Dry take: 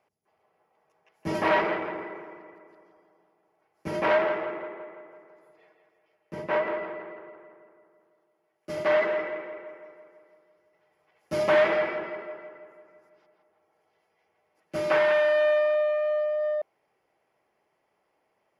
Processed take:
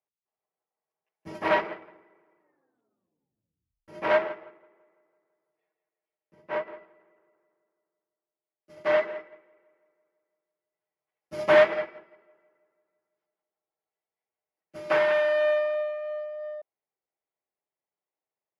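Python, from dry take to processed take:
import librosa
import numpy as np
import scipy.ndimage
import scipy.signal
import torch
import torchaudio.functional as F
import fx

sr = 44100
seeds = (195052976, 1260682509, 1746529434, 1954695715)

y = fx.edit(x, sr, fx.tape_stop(start_s=2.39, length_s=1.49), tone=tone)
y = fx.upward_expand(y, sr, threshold_db=-36.0, expansion=2.5)
y = y * librosa.db_to_amplitude(4.0)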